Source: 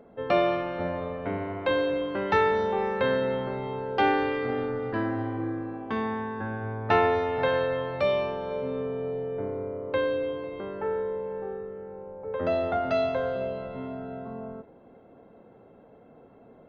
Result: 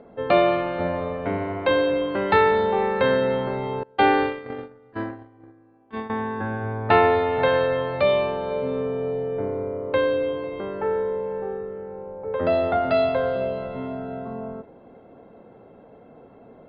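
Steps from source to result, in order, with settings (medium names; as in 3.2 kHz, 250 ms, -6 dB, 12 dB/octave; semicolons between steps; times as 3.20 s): 3.83–6.10 s: gate -26 dBFS, range -26 dB; Chebyshev low-pass 4.8 kHz, order 10; trim +5.5 dB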